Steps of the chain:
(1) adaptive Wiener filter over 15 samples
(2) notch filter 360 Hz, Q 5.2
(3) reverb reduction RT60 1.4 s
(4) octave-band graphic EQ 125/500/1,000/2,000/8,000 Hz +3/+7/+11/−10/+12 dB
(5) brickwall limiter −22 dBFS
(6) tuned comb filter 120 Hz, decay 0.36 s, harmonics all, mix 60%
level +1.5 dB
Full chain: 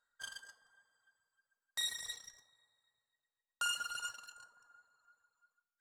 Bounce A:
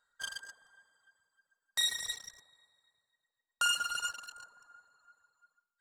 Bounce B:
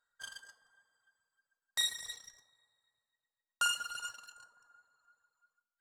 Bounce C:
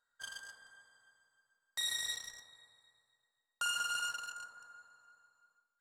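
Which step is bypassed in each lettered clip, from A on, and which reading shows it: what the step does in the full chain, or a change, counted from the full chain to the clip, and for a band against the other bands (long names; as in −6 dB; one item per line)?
6, change in integrated loudness +6.0 LU
5, change in crest factor +3.5 dB
3, change in crest factor −2.5 dB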